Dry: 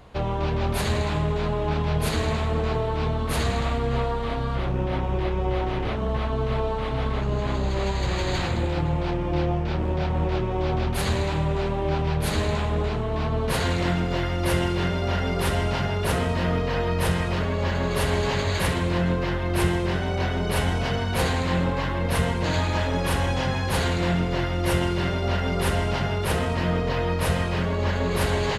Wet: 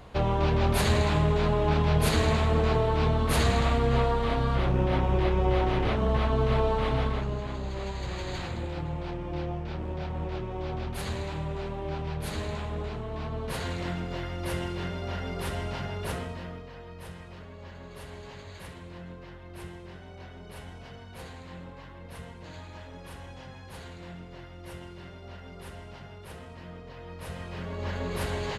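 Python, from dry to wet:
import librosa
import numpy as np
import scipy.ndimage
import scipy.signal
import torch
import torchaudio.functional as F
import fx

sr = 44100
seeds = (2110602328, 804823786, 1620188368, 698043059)

y = fx.gain(x, sr, db=fx.line((6.92, 0.5), (7.48, -9.0), (16.1, -9.0), (16.72, -20.0), (26.94, -20.0), (27.94, -8.0)))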